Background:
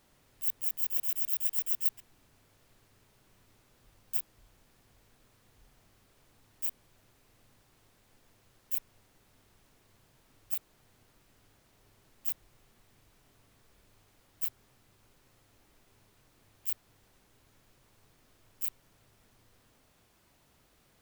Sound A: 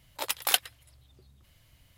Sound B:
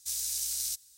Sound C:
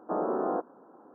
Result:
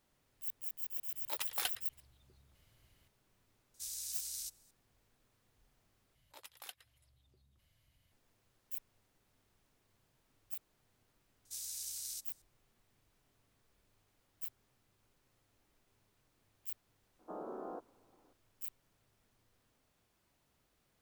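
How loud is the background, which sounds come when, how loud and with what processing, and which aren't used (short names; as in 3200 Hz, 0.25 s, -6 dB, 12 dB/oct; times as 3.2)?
background -10 dB
1.11 add A -9 dB + soft clip -17.5 dBFS
3.74 add B -10 dB
6.15 replace with A -12.5 dB + compressor 1.5:1, threshold -56 dBFS
11.45 add B -10.5 dB + HPF 59 Hz
17.19 add C -15.5 dB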